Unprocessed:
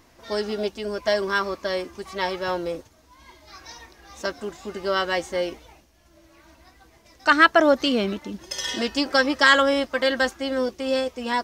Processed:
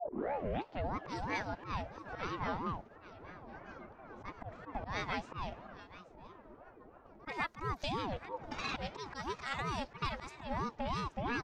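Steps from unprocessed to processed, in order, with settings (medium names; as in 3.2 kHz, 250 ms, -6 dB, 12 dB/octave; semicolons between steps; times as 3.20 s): tape start-up on the opening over 0.96 s; level-controlled noise filter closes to 780 Hz, open at -15.5 dBFS; compression 10:1, threshold -32 dBFS, peak gain reduction 23 dB; slow attack 104 ms; delay 827 ms -16 dB; ring modulator with a swept carrier 500 Hz, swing 45%, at 3 Hz; trim +1.5 dB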